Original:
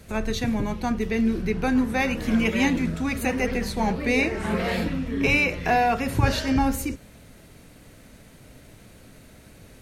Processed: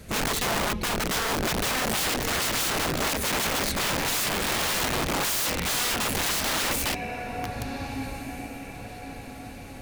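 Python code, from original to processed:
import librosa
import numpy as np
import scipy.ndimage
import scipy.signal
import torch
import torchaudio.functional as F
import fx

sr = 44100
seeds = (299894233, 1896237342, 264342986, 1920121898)

y = fx.echo_diffused(x, sr, ms=1485, feedback_pct=41, wet_db=-14.0)
y = (np.mod(10.0 ** (24.0 / 20.0) * y + 1.0, 2.0) - 1.0) / 10.0 ** (24.0 / 20.0)
y = y * librosa.db_to_amplitude(2.5)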